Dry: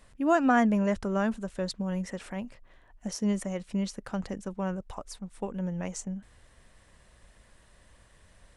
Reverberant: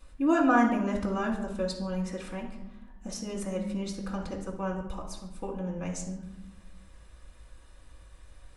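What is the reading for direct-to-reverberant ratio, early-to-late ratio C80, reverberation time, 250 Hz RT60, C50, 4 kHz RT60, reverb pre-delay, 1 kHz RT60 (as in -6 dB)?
-1.0 dB, 9.5 dB, 0.85 s, 1.4 s, 6.0 dB, 0.60 s, 3 ms, 0.80 s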